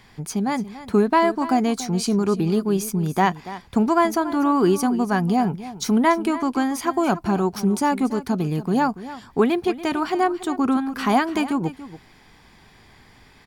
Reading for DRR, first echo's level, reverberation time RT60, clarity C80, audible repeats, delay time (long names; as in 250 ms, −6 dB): no reverb audible, −15.0 dB, no reverb audible, no reverb audible, 1, 285 ms